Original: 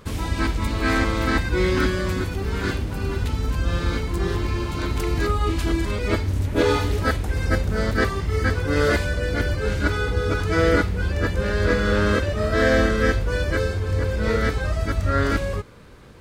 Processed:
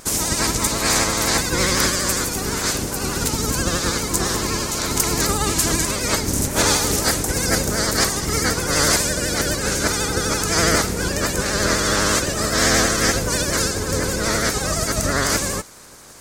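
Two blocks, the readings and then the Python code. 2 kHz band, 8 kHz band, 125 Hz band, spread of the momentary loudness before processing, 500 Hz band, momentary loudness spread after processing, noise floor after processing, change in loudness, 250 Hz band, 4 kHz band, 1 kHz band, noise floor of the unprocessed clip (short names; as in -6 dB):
+2.5 dB, +22.5 dB, -3.0 dB, 6 LU, -0.5 dB, 5 LU, -26 dBFS, +3.5 dB, +0.5 dB, +11.5 dB, +4.0 dB, -29 dBFS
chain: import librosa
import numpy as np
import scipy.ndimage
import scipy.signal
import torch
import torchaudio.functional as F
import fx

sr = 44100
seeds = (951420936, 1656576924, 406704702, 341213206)

y = fx.spec_clip(x, sr, under_db=17)
y = fx.high_shelf_res(y, sr, hz=4600.0, db=12.5, q=1.5)
y = fx.vibrato(y, sr, rate_hz=12.0, depth_cents=84.0)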